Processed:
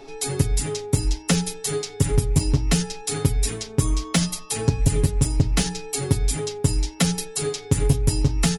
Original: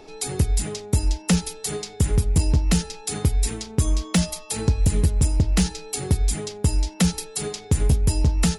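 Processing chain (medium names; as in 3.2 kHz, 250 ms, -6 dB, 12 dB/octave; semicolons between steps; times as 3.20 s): hum notches 60/120/180 Hz; comb 7.3 ms, depth 79%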